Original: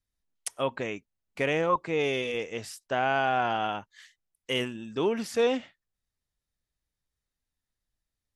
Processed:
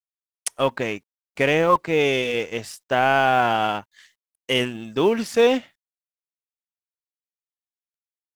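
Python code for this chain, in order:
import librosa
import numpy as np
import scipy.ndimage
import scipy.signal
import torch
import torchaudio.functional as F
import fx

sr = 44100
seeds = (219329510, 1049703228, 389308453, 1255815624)

y = fx.law_mismatch(x, sr, coded='A')
y = F.gain(torch.from_numpy(y), 8.5).numpy()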